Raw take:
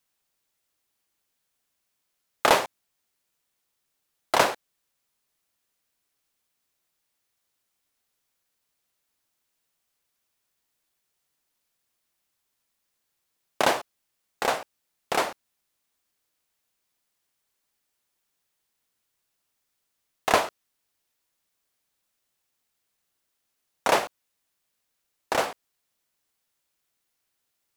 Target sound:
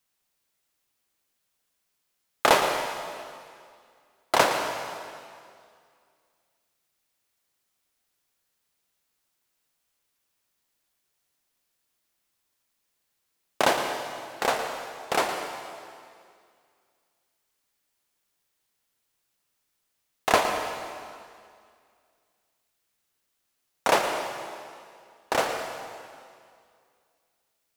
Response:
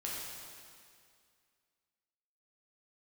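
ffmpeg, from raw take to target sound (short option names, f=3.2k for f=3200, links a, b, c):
-filter_complex "[0:a]asplit=2[a][b];[1:a]atrim=start_sample=2205,adelay=113[c];[b][c]afir=irnorm=-1:irlink=0,volume=-7dB[d];[a][d]amix=inputs=2:normalize=0"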